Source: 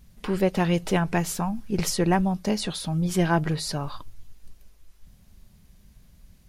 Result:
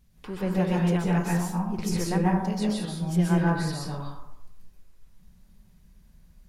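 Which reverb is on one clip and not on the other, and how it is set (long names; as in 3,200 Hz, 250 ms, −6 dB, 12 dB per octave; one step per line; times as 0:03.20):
dense smooth reverb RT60 0.81 s, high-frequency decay 0.4×, pre-delay 115 ms, DRR −4.5 dB
level −9.5 dB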